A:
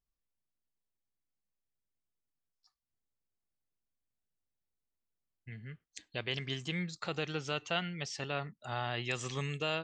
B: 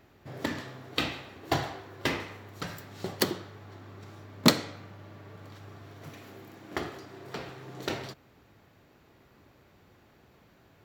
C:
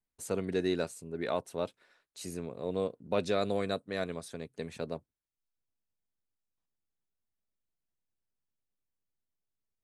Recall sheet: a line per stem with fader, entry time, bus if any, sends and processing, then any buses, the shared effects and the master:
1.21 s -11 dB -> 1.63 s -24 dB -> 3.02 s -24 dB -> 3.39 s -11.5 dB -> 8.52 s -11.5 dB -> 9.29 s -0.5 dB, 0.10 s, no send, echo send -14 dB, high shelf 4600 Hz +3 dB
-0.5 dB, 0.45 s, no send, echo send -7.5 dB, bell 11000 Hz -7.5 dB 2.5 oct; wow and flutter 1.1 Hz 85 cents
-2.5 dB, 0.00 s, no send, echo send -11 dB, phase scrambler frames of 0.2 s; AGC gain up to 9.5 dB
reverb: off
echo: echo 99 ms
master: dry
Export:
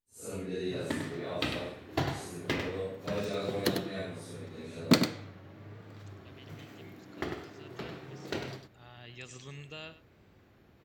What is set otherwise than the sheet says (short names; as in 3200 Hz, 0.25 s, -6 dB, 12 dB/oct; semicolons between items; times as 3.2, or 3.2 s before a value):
stem A -11.0 dB -> -19.5 dB; stem C: missing AGC gain up to 9.5 dB; master: extra bell 900 Hz -5 dB 1.6 oct